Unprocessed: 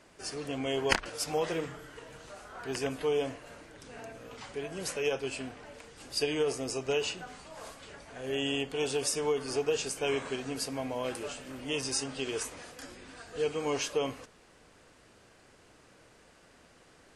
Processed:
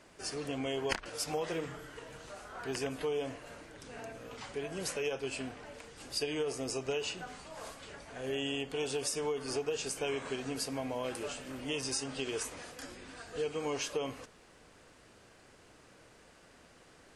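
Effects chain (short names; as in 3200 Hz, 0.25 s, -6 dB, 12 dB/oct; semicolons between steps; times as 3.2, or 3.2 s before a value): compressor 2.5:1, threshold -33 dBFS, peak gain reduction 9 dB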